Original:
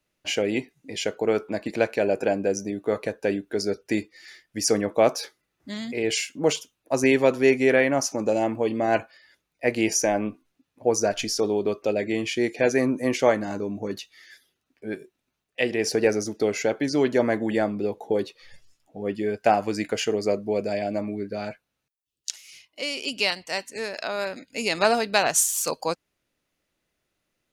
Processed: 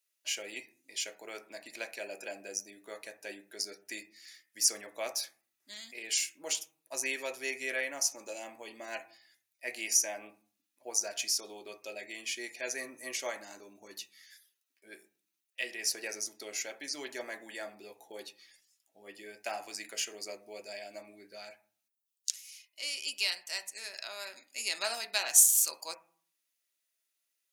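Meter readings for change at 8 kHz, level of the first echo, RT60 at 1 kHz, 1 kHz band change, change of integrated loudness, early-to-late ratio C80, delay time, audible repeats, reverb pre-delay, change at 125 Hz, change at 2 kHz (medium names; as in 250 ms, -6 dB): -0.5 dB, no echo, 0.45 s, -17.5 dB, -8.0 dB, 20.0 dB, no echo, no echo, 3 ms, under -30 dB, -9.5 dB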